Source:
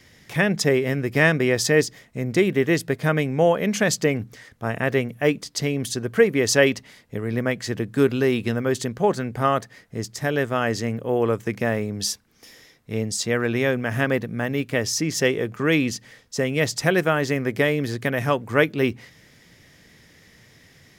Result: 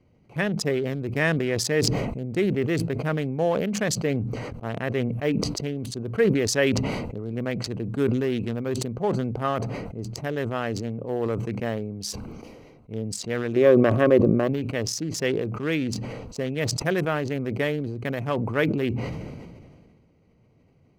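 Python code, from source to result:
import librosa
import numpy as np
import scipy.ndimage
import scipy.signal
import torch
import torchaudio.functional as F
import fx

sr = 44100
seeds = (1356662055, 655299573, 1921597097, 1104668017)

y = fx.wiener(x, sr, points=25)
y = fx.small_body(y, sr, hz=(370.0, 550.0, 1100.0), ring_ms=30, db=14, at=(13.56, 14.48))
y = fx.sustainer(y, sr, db_per_s=30.0)
y = y * 10.0 ** (-5.5 / 20.0)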